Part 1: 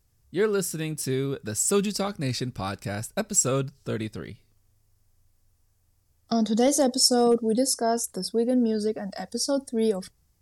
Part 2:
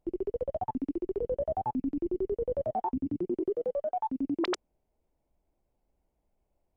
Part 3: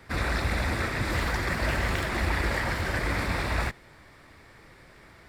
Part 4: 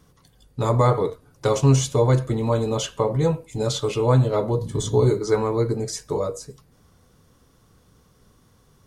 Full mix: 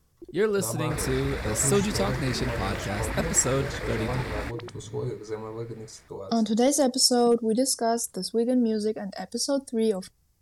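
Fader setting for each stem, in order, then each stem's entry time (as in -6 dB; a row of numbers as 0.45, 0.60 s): -0.5, -10.5, -6.0, -13.5 dB; 0.00, 0.15, 0.80, 0.00 s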